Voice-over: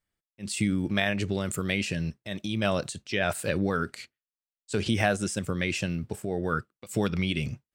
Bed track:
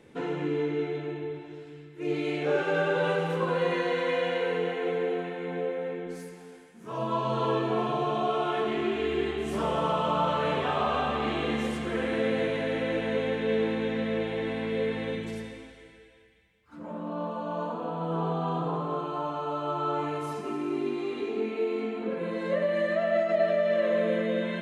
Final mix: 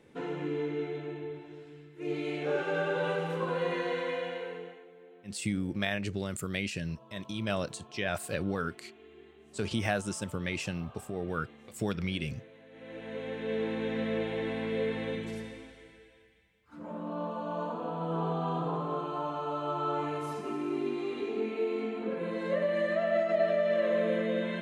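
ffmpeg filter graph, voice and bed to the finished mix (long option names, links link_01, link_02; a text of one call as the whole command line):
ffmpeg -i stem1.wav -i stem2.wav -filter_complex "[0:a]adelay=4850,volume=-5.5dB[link_01];[1:a]volume=18.5dB,afade=type=out:start_time=3.94:duration=0.93:silence=0.0891251,afade=type=in:start_time=12.71:duration=1.33:silence=0.0707946[link_02];[link_01][link_02]amix=inputs=2:normalize=0" out.wav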